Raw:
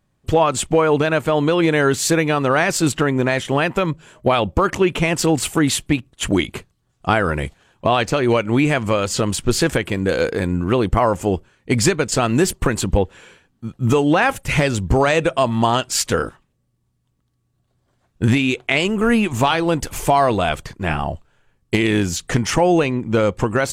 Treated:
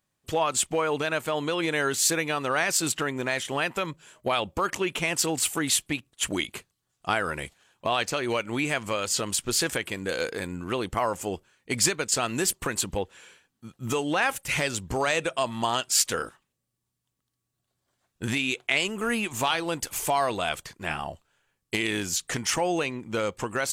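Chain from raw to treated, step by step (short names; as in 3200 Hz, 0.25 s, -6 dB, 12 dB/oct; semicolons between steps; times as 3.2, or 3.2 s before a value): tilt +2.5 dB/oct; gain -8.5 dB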